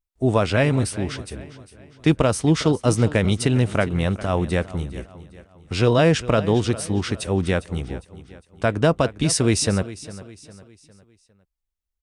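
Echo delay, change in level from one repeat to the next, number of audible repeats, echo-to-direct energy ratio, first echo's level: 405 ms, −7.5 dB, 3, −15.5 dB, −16.5 dB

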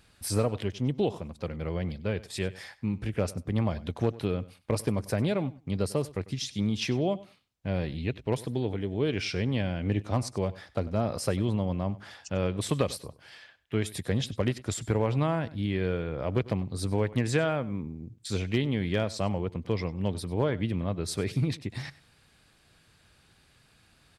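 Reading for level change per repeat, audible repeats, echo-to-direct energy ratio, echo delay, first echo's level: −16.0 dB, 2, −19.0 dB, 97 ms, −19.0 dB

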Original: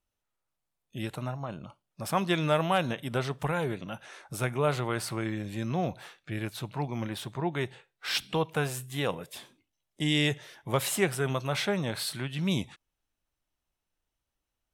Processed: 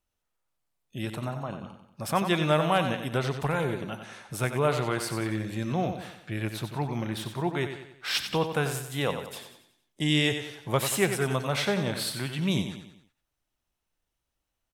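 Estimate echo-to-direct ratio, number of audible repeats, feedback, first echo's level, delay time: −7.5 dB, 4, 46%, −8.5 dB, 92 ms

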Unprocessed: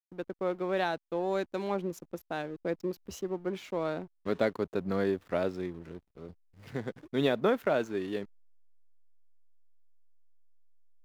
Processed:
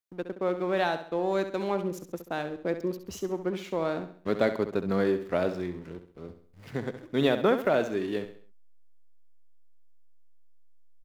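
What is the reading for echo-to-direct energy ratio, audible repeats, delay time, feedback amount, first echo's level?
−9.5 dB, 4, 67 ms, 41%, −10.5 dB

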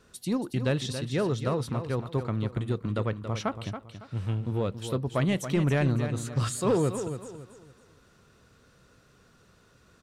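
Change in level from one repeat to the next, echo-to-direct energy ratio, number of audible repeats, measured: −10.0 dB, −9.0 dB, 3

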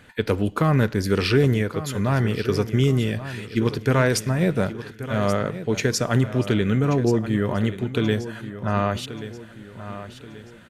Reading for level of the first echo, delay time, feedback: −13.0 dB, 1,131 ms, 43%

